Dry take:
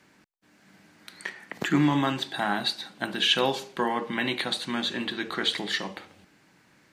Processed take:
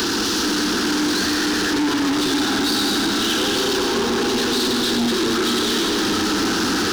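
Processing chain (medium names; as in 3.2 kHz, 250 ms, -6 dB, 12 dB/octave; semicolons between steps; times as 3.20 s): one-bit delta coder 32 kbps, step -17 dBFS; high-order bell 840 Hz -9.5 dB 1.2 oct; reverberation RT60 5.0 s, pre-delay 60 ms, DRR -3 dB; upward compressor, threshold -21 dBFS; high-pass 120 Hz 6 dB/octave; static phaser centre 580 Hz, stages 6; waveshaping leveller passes 5; trim -8.5 dB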